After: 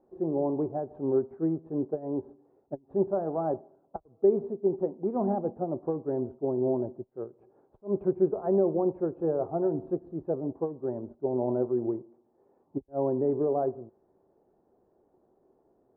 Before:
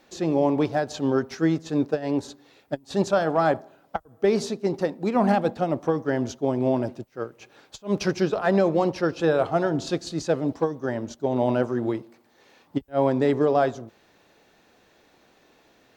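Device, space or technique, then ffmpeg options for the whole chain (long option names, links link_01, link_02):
under water: -af "lowpass=frequency=890:width=0.5412,lowpass=frequency=890:width=1.3066,equalizer=frequency=380:width_type=o:width=0.23:gain=10,volume=-8dB"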